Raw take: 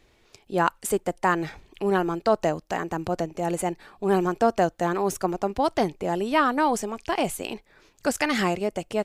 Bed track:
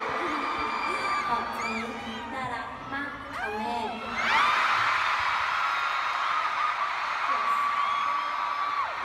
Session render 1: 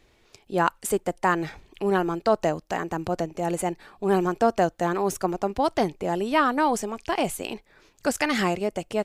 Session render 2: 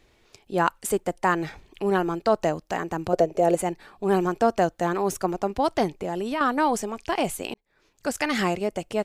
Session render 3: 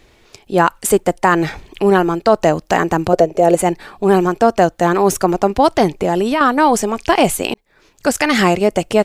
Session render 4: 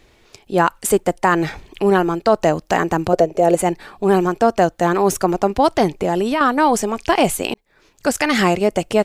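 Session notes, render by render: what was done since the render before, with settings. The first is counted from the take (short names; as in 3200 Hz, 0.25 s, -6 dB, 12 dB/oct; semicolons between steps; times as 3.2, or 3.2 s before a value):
nothing audible
3.13–3.55 band shelf 510 Hz +10 dB 1.1 oct; 5.9–6.41 compressor 4:1, threshold -24 dBFS; 7.54–8.62 fade in equal-power
vocal rider within 4 dB 0.5 s; maximiser +11 dB
gain -2.5 dB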